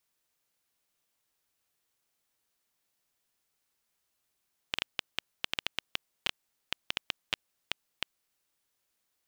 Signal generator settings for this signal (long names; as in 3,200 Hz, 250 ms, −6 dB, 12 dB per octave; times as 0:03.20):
Geiger counter clicks 6.4 per second −10.5 dBFS 3.43 s